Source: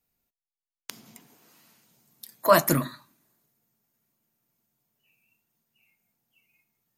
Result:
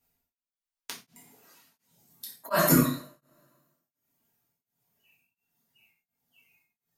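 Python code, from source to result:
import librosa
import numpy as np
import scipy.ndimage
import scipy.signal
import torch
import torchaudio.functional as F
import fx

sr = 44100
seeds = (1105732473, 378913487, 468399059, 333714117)

y = fx.dereverb_blind(x, sr, rt60_s=1.2)
y = fx.rev_double_slope(y, sr, seeds[0], early_s=0.48, late_s=1.5, knee_db=-23, drr_db=-5.0)
y = y * np.abs(np.cos(np.pi * 1.4 * np.arange(len(y)) / sr))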